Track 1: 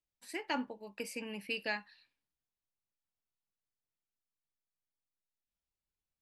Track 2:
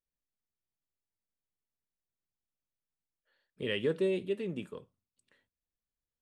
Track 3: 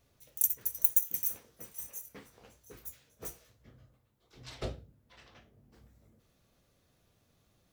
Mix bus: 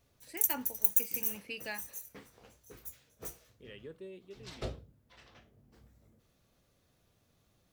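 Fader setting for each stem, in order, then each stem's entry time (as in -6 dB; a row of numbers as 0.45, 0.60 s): -4.5, -17.5, -1.0 dB; 0.00, 0.00, 0.00 s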